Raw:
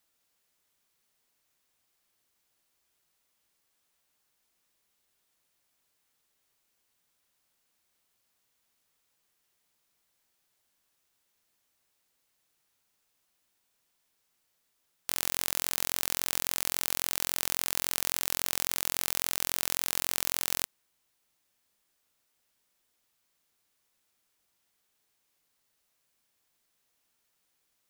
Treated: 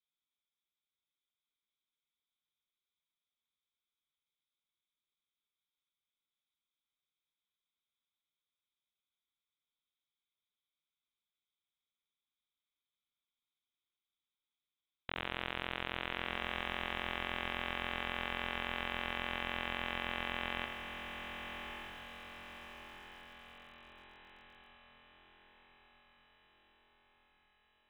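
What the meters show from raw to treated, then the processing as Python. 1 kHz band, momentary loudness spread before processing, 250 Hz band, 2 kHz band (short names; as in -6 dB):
+1.5 dB, 1 LU, +1.5 dB, +1.5 dB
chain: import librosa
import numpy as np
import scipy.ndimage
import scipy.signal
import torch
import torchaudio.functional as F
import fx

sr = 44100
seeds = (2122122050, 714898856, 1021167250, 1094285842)

p1 = fx.wiener(x, sr, points=41)
p2 = fx.low_shelf(p1, sr, hz=390.0, db=-11.5)
p3 = p2 + fx.echo_diffused(p2, sr, ms=1197, feedback_pct=53, wet_db=-6, dry=0)
p4 = fx.freq_invert(p3, sr, carrier_hz=3900)
y = fx.echo_crushed(p4, sr, ms=84, feedback_pct=35, bits=9, wet_db=-9.5)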